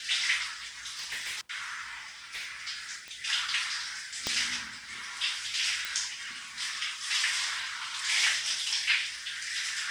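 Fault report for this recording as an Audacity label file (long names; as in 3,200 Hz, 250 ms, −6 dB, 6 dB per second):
0.900000	1.410000	clipping −31.5 dBFS
2.340000	2.490000	clipping −33 dBFS
3.080000	3.080000	click −27 dBFS
4.270000	4.270000	click −15 dBFS
5.850000	5.850000	click −18 dBFS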